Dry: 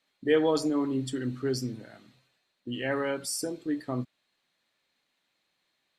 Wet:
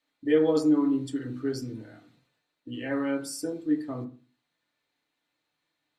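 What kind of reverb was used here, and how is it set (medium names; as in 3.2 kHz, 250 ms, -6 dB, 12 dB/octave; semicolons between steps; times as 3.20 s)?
FDN reverb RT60 0.36 s, low-frequency decay 1.25×, high-frequency decay 0.25×, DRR 0 dB; trim -5.5 dB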